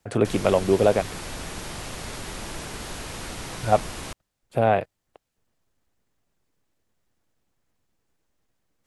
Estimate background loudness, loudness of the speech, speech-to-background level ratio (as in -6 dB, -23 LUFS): -35.0 LUFS, -22.5 LUFS, 12.5 dB